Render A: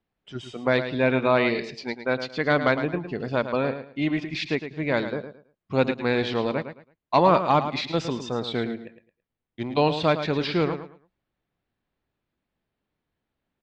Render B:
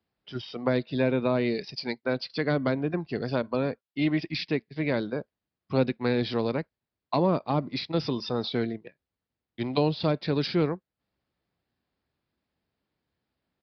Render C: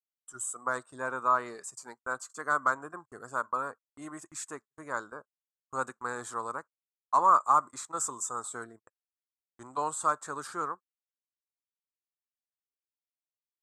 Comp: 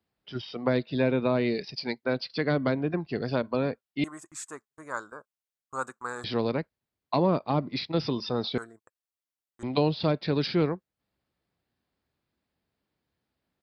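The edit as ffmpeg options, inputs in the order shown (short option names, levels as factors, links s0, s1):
-filter_complex "[2:a]asplit=2[s0][s1];[1:a]asplit=3[s2][s3][s4];[s2]atrim=end=4.042[s5];[s0]atrim=start=4.038:end=6.242[s6];[s3]atrim=start=6.238:end=8.582[s7];[s1]atrim=start=8.578:end=9.632[s8];[s4]atrim=start=9.628[s9];[s5][s6]acrossfade=d=0.004:c1=hsin:c2=hsin[s10];[s10][s7]acrossfade=d=0.004:c1=hsin:c2=hsin[s11];[s11][s8]acrossfade=d=0.004:c1=hsin:c2=hsin[s12];[s12][s9]acrossfade=d=0.004:c1=hsin:c2=hsin"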